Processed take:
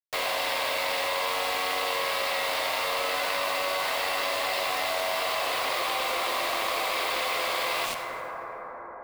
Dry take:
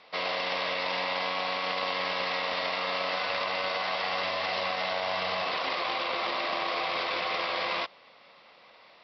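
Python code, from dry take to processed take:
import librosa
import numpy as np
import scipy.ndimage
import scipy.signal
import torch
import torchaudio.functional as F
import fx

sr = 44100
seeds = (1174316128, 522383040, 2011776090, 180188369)

y = scipy.signal.sosfilt(scipy.signal.butter(4, 280.0, 'highpass', fs=sr, output='sos'), x)
y = y + 10.0 ** (-8.0 / 20.0) * np.pad(y, (int(89 * sr / 1000.0), 0))[:len(y)]
y = fx.quant_dither(y, sr, seeds[0], bits=6, dither='none')
y = fx.rev_plate(y, sr, seeds[1], rt60_s=2.3, hf_ratio=0.4, predelay_ms=0, drr_db=13.5)
y = fx.env_flatten(y, sr, amount_pct=70)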